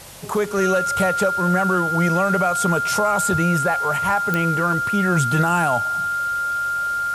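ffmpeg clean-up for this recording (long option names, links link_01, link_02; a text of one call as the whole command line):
ffmpeg -i in.wav -af "adeclick=threshold=4,bandreject=frequency=47:width_type=h:width=4,bandreject=frequency=94:width_type=h:width=4,bandreject=frequency=141:width_type=h:width=4,bandreject=frequency=1400:width=30,afwtdn=0.01" out.wav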